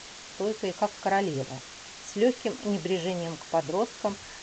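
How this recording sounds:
a quantiser's noise floor 6 bits, dither triangular
G.722

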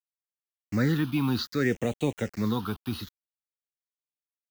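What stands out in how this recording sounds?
a quantiser's noise floor 8 bits, dither none
phaser sweep stages 6, 0.63 Hz, lowest notch 520–1,400 Hz

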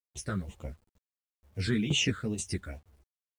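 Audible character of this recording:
phaser sweep stages 8, 2.2 Hz, lowest notch 780–1,600 Hz
tremolo saw down 2.1 Hz, depth 80%
a quantiser's noise floor 12 bits, dither none
a shimmering, thickened sound

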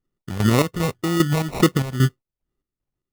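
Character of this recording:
phaser sweep stages 6, 2 Hz, lowest notch 320–2,800 Hz
aliases and images of a low sample rate 1,600 Hz, jitter 0%
chopped level 2.5 Hz, depth 65%, duty 55%

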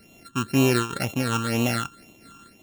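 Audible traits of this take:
a buzz of ramps at a fixed pitch in blocks of 32 samples
phaser sweep stages 8, 2 Hz, lowest notch 600–1,500 Hz
amplitude modulation by smooth noise

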